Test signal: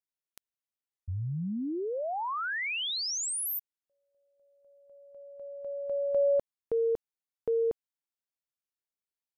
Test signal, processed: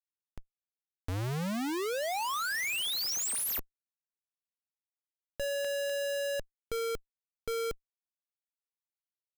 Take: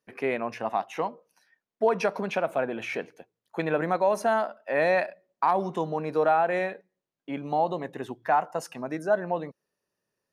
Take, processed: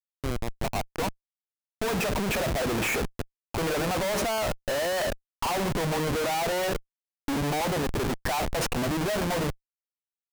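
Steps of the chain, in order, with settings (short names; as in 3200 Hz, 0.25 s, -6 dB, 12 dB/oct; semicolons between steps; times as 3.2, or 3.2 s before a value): opening faded in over 2.74 s; Schmitt trigger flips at -40.5 dBFS; gain +2 dB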